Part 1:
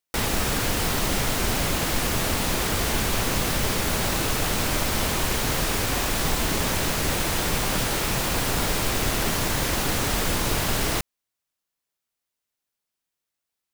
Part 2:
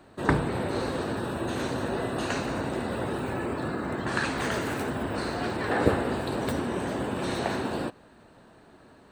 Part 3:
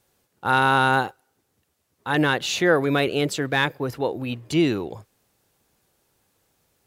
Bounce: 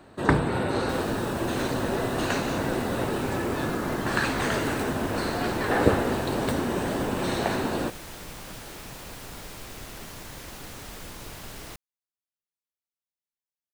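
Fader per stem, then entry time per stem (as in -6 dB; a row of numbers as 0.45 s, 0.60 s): -16.5 dB, +2.5 dB, -19.0 dB; 0.75 s, 0.00 s, 0.00 s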